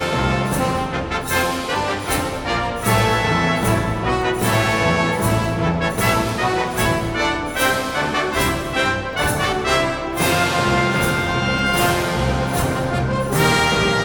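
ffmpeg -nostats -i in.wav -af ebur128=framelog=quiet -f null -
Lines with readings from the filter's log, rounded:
Integrated loudness:
  I:         -18.7 LUFS
  Threshold: -28.7 LUFS
Loudness range:
  LRA:         1.3 LU
  Threshold: -38.7 LUFS
  LRA low:   -19.4 LUFS
  LRA high:  -18.0 LUFS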